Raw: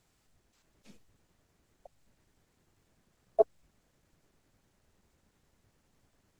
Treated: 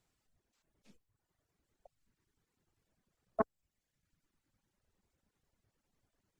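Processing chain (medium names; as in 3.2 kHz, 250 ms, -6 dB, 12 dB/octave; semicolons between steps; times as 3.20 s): reverb removal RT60 1.3 s; loudspeaker Doppler distortion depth 0.44 ms; trim -7.5 dB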